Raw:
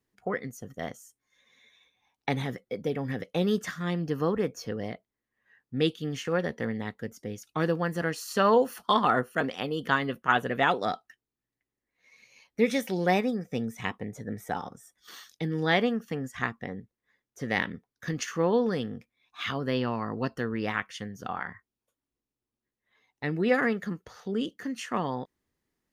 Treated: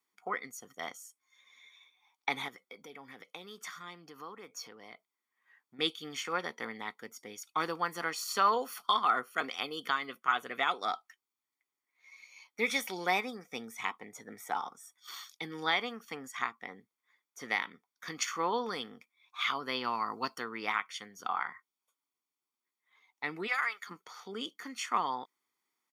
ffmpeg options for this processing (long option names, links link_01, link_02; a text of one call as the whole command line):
ffmpeg -i in.wav -filter_complex "[0:a]asettb=1/sr,asplit=3[link_01][link_02][link_03];[link_01]atrim=end=2.484[link_04];[link_02]atrim=start=2.48:end=5.79,asetpts=PTS-STARTPTS,afade=type=in:duration=0.004:curve=qsin,afade=type=out:start_time=3.306:duration=0.004:curve=qsin,acompressor=threshold=-42dB:ratio=2.5:attack=3.2:release=140:knee=1:detection=peak[link_05];[link_03]atrim=start=5.786[link_06];[link_04][link_05]acrossfade=duration=0.004:curve1=hsin:curve2=qsin[link_07];[link_07][link_06]acrossfade=duration=0.004:curve1=qsin:curve2=hsin,asettb=1/sr,asplit=3[link_08][link_09][link_10];[link_08]atrim=end=8.484[link_11];[link_09]atrim=start=8.48:end=10.89,asetpts=PTS-STARTPTS,afade=type=in:duration=0.004:curve=qsin,afade=type=out:start_time=2.406:duration=0.004:curve=qsin,equalizer=frequency=920:width_type=o:width=0.29:gain=-7.5[link_12];[link_10]atrim=start=10.886[link_13];[link_11][link_12]acrossfade=duration=0.004:curve1=hsin:curve2=qsin[link_14];[link_14][link_13]acrossfade=duration=0.004:curve1=qsin:curve2=hsin,asettb=1/sr,asplit=3[link_15][link_16][link_17];[link_15]atrim=end=19.844[link_18];[link_16]atrim=start=19.84:end=20.39,asetpts=PTS-STARTPTS,afade=type=in:duration=0.004:curve=qsin,afade=type=out:start_time=0.546:duration=0.004:curve=qsin,bass=frequency=250:gain=2,treble=frequency=4000:gain=7[link_19];[link_17]atrim=start=20.386[link_20];[link_18][link_19]acrossfade=duration=0.004:curve1=hsin:curve2=qsin[link_21];[link_21][link_20]acrossfade=duration=0.004:curve1=qsin:curve2=hsin,asplit=3[link_22][link_23][link_24];[link_22]afade=type=out:start_time=23.46:duration=0.02[link_25];[link_23]highpass=1200,afade=type=in:start_time=23.46:duration=0.02,afade=type=out:start_time=23.89:duration=0.02[link_26];[link_24]afade=type=in:start_time=23.89:duration=0.02[link_27];[link_25][link_26][link_27]amix=inputs=3:normalize=0,highpass=590,aecho=1:1:0.9:0.6,alimiter=limit=-16dB:level=0:latency=1:release=381" out.wav